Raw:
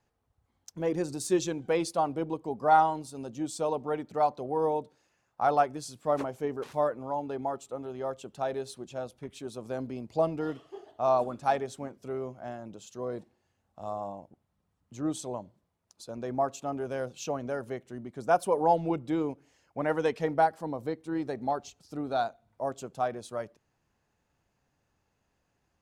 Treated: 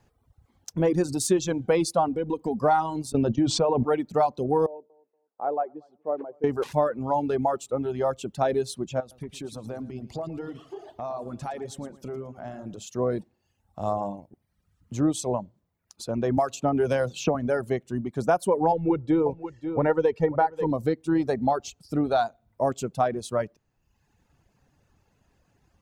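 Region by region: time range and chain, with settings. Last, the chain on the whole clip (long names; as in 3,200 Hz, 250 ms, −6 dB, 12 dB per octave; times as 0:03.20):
0:02.08–0:02.59: comb filter 4.1 ms, depth 47% + downward compressor 3 to 1, threshold −33 dBFS
0:03.12–0:03.85: noise gate −44 dBFS, range −24 dB + high-frequency loss of the air 180 metres + envelope flattener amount 70%
0:04.66–0:06.44: four-pole ladder band-pass 520 Hz, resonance 30% + repeating echo 236 ms, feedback 22%, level −19.5 dB
0:09.00–0:12.83: downward compressor 3 to 1, threshold −45 dBFS + repeating echo 113 ms, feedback 41%, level −9 dB
0:16.37–0:17.35: high-shelf EQ 5,100 Hz −6 dB + multiband upward and downward compressor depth 100%
0:18.72–0:20.71: low-pass filter 1,500 Hz 6 dB per octave + comb filter 2.2 ms, depth 50% + single-tap delay 538 ms −12.5 dB
whole clip: reverb reduction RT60 0.9 s; low-shelf EQ 280 Hz +7 dB; downward compressor 6 to 1, threshold −27 dBFS; level +8.5 dB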